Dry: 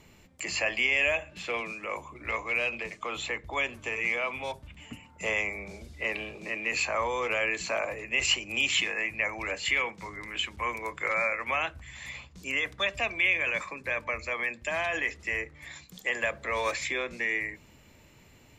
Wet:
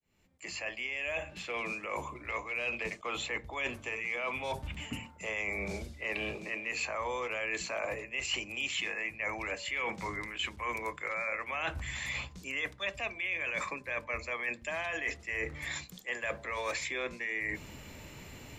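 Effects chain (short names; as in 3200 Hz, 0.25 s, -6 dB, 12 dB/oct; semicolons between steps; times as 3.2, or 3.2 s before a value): opening faded in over 2.54 s; reverse; compressor 6:1, threshold -42 dBFS, peak gain reduction 19 dB; reverse; de-hum 113.9 Hz, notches 9; attack slew limiter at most 480 dB/s; gain +8.5 dB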